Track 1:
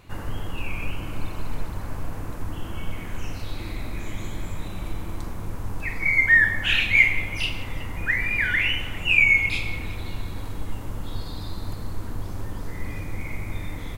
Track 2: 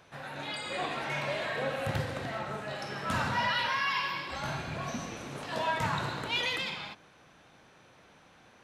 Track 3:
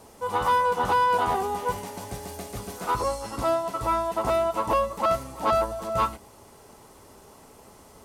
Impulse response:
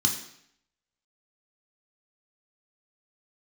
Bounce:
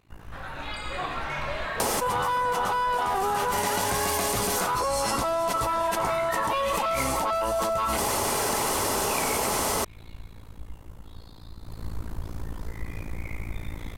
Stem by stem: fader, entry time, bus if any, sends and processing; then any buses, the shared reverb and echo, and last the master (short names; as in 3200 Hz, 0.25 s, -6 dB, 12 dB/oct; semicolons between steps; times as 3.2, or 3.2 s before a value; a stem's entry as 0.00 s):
11.59 s -9.5 dB -> 11.85 s 0 dB, 0.00 s, no send, AM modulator 56 Hz, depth 85%
-0.5 dB, 0.20 s, no send, bell 1200 Hz +8 dB
+2.0 dB, 1.80 s, no send, low shelf 440 Hz -9.5 dB; fast leveller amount 100%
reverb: off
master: compressor 4:1, threshold -24 dBFS, peak gain reduction 8 dB